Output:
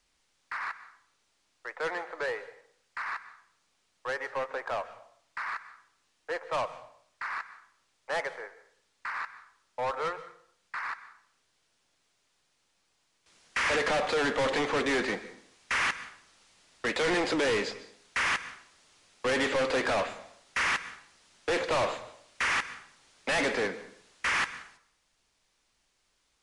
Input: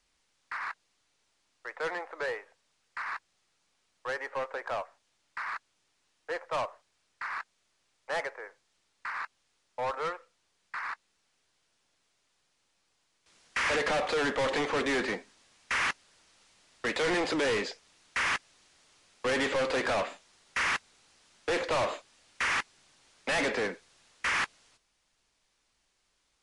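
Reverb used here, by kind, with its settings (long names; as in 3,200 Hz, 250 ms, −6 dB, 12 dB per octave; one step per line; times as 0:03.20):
dense smooth reverb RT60 0.6 s, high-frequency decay 0.8×, pre-delay 115 ms, DRR 14.5 dB
level +1 dB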